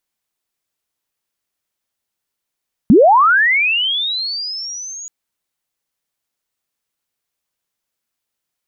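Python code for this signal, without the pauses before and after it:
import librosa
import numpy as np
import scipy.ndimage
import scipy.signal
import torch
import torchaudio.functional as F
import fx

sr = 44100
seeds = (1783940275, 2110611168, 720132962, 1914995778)

y = fx.chirp(sr, length_s=2.18, from_hz=180.0, to_hz=6800.0, law='linear', from_db=-4.0, to_db=-28.0)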